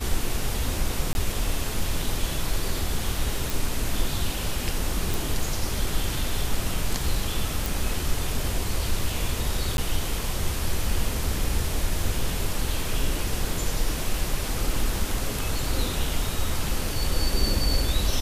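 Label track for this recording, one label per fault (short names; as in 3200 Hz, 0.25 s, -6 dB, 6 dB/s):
1.130000	1.150000	gap 21 ms
3.500000	3.500000	pop
5.140000	5.140000	pop
7.660000	7.660000	pop
9.770000	9.780000	gap 11 ms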